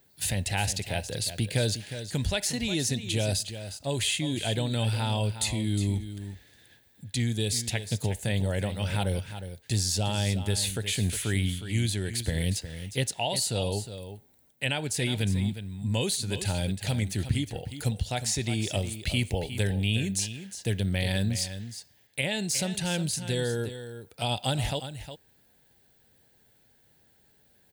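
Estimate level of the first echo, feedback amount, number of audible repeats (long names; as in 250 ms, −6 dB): −11.0 dB, repeats not evenly spaced, 1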